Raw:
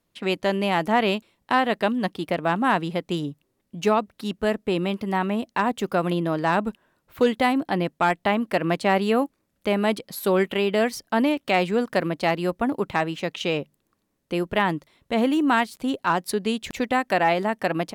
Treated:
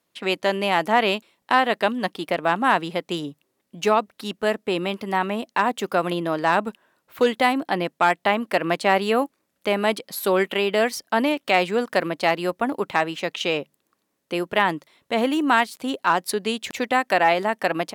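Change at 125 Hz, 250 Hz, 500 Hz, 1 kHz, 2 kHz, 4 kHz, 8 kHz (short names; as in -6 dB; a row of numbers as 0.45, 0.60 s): -4.5, -2.5, +1.0, +2.5, +3.5, +3.5, +3.5 dB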